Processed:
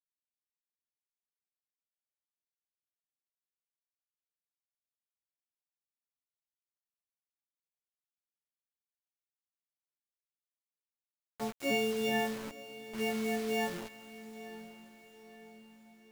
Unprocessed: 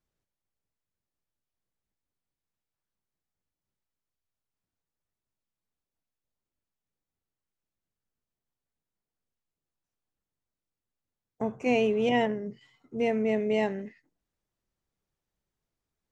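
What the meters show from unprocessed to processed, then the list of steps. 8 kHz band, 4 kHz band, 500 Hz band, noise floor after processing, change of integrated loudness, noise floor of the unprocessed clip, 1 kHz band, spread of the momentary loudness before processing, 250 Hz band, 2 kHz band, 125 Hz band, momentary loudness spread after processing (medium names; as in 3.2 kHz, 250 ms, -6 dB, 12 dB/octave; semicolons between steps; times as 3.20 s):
no reading, +1.0 dB, -8.0 dB, under -85 dBFS, -6.5 dB, under -85 dBFS, -5.0 dB, 15 LU, -7.0 dB, -1.5 dB, -7.5 dB, 18 LU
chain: partials quantised in pitch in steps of 4 st; bit crusher 6-bit; echo that smears into a reverb 883 ms, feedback 47%, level -15 dB; trim -7 dB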